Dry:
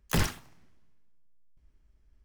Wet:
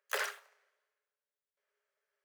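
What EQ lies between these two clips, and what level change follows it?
rippled Chebyshev high-pass 400 Hz, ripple 9 dB; notch 5400 Hz, Q 23; +1.5 dB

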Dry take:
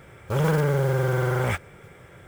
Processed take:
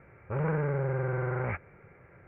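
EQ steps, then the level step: steep low-pass 2500 Hz 72 dB/oct; -7.5 dB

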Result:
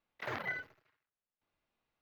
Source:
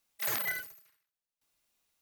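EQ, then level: air absorption 250 m; high shelf 3000 Hz -9 dB; +2.5 dB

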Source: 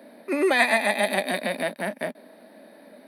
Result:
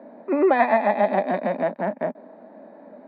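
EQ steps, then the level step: synth low-pass 890 Hz, resonance Q 1.6; low shelf 480 Hz -3 dB; bell 670 Hz -5 dB 2.3 oct; +7.5 dB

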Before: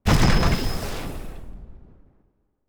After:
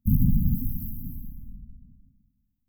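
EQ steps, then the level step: brick-wall FIR band-stop 270–12000 Hz; tone controls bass -8 dB, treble +7 dB; low shelf 410 Hz +5.5 dB; 0.0 dB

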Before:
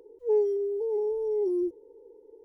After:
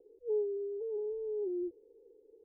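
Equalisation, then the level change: steep low-pass 780 Hz 72 dB/oct; -8.5 dB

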